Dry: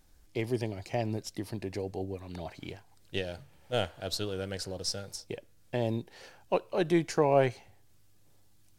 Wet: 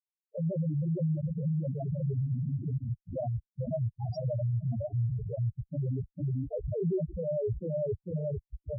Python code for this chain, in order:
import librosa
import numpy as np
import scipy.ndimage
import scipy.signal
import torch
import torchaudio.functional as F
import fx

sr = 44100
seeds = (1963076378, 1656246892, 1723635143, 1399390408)

y = fx.pitch_glide(x, sr, semitones=7.5, runs='ending unshifted')
y = fx.peak_eq(y, sr, hz=4600.0, db=-11.5, octaves=2.0)
y = fx.echo_wet_highpass(y, sr, ms=1039, feedback_pct=67, hz=4200.0, wet_db=-17)
y = fx.rotary_switch(y, sr, hz=5.5, then_hz=0.85, switch_at_s=0.62)
y = fx.echo_feedback(y, sr, ms=450, feedback_pct=40, wet_db=-7)
y = fx.leveller(y, sr, passes=5)
y = fx.peak_eq(y, sr, hz=270.0, db=-4.0, octaves=0.29)
y = fx.schmitt(y, sr, flips_db=-28.0)
y = scipy.signal.sosfilt(scipy.signal.butter(2, 61.0, 'highpass', fs=sr, output='sos'), y)
y = fx.spec_topn(y, sr, count=2)
y = y * 10.0 ** (-1.5 / 20.0)